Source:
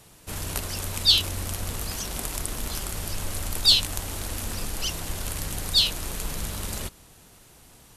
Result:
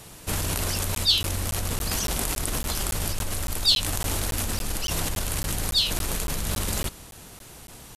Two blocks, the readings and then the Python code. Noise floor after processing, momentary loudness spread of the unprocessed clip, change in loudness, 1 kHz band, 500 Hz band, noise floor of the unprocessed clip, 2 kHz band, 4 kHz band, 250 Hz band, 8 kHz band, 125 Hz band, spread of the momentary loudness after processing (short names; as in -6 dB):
-46 dBFS, 13 LU, 0.0 dB, +4.0 dB, +4.0 dB, -53 dBFS, +2.5 dB, -2.0 dB, +4.0 dB, +3.0 dB, +3.5 dB, 12 LU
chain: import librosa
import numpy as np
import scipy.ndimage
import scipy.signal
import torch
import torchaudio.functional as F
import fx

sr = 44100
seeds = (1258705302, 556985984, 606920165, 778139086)

p1 = fx.over_compress(x, sr, threshold_db=-33.0, ratio=-0.5)
p2 = x + F.gain(torch.from_numpy(p1), 2.0).numpy()
p3 = fx.buffer_crackle(p2, sr, first_s=0.95, period_s=0.28, block=512, kind='zero')
y = F.gain(torch.from_numpy(p3), -2.5).numpy()